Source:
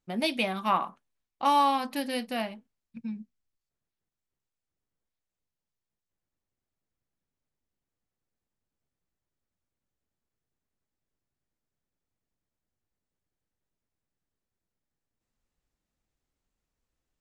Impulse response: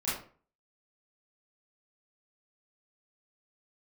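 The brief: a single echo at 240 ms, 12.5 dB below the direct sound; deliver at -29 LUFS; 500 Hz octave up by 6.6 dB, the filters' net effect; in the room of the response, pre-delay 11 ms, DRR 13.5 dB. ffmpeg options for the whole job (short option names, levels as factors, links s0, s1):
-filter_complex "[0:a]equalizer=f=500:t=o:g=8,aecho=1:1:240:0.237,asplit=2[s0][s1];[1:a]atrim=start_sample=2205,adelay=11[s2];[s1][s2]afir=irnorm=-1:irlink=0,volume=0.1[s3];[s0][s3]amix=inputs=2:normalize=0,volume=0.668"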